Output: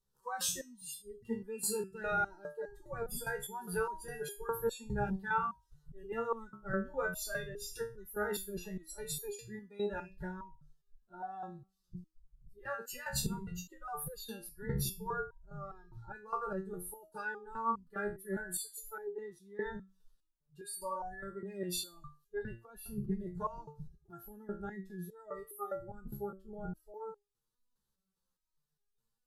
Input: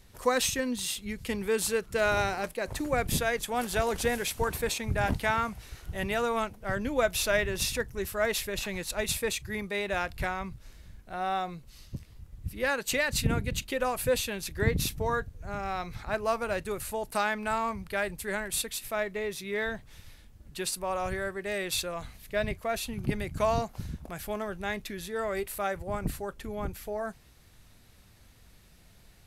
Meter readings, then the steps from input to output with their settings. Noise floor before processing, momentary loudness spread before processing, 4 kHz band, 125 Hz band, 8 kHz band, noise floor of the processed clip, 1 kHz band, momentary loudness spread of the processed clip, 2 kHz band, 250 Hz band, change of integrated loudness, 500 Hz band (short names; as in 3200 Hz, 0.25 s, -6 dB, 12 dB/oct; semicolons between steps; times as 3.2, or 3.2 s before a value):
-57 dBFS, 10 LU, -12.5 dB, -9.0 dB, -7.5 dB, -84 dBFS, -8.0 dB, 13 LU, -10.5 dB, -7.5 dB, -9.0 dB, -10.0 dB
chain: fixed phaser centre 440 Hz, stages 8; spectral noise reduction 23 dB; stepped resonator 4.9 Hz 69–410 Hz; gain +7 dB